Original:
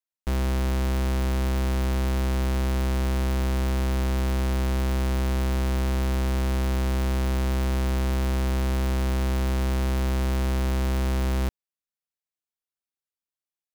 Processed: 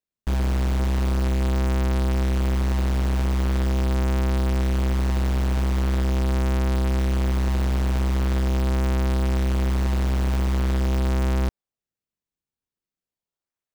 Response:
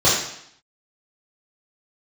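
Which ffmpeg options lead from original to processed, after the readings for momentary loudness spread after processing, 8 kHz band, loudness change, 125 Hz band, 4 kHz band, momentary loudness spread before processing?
1 LU, −1.0 dB, +2.5 dB, +3.0 dB, 0.0 dB, 0 LU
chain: -filter_complex "[0:a]equalizer=frequency=12000:width=2.7:gain=-13,asplit=2[link_01][link_02];[link_02]acrusher=samples=37:mix=1:aa=0.000001:lfo=1:lforange=59.2:lforate=0.42,volume=-3.5dB[link_03];[link_01][link_03]amix=inputs=2:normalize=0,volume=-1.5dB"

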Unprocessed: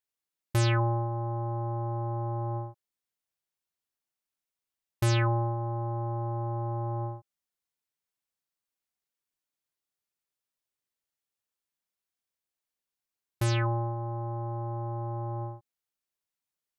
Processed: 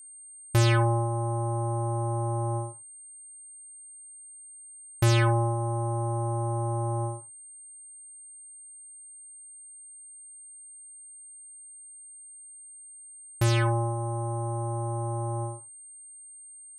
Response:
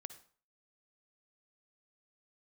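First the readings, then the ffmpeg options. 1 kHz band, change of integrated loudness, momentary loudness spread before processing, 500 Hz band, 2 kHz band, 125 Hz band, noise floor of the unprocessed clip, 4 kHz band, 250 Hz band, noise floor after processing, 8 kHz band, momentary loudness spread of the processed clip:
+3.0 dB, +3.5 dB, 10 LU, +4.0 dB, +4.0 dB, +3.0 dB, below −85 dBFS, +4.0 dB, +4.0 dB, −48 dBFS, +12.0 dB, 20 LU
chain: -filter_complex "[0:a]aeval=exprs='val(0)+0.00355*sin(2*PI*8700*n/s)':channel_layout=same,acontrast=30[link_01];[1:a]atrim=start_sample=2205,atrim=end_sample=3969[link_02];[link_01][link_02]afir=irnorm=-1:irlink=0,volume=4dB"

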